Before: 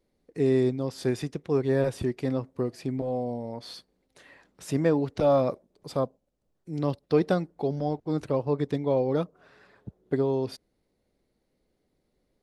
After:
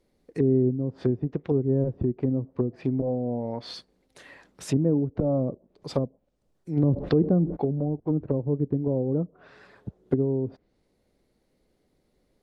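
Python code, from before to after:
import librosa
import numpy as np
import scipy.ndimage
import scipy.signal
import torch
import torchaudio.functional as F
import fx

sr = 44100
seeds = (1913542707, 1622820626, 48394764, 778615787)

y = fx.env_lowpass_down(x, sr, base_hz=320.0, full_db=-24.5)
y = fx.env_flatten(y, sr, amount_pct=70, at=(6.76, 7.55), fade=0.02)
y = y * librosa.db_to_amplitude(4.5)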